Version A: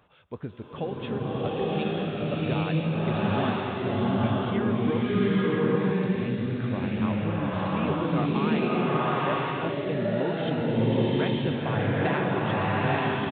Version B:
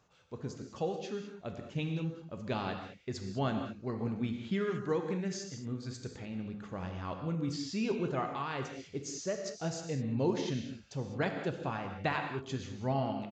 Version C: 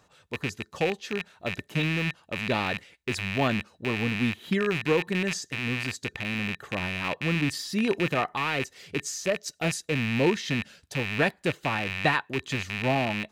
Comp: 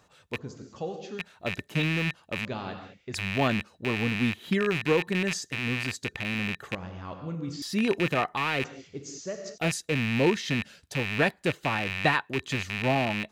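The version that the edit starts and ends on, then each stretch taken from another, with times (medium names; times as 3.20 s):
C
0.38–1.19 s: from B
2.45–3.14 s: from B
6.75–7.62 s: from B
8.64–9.58 s: from B
not used: A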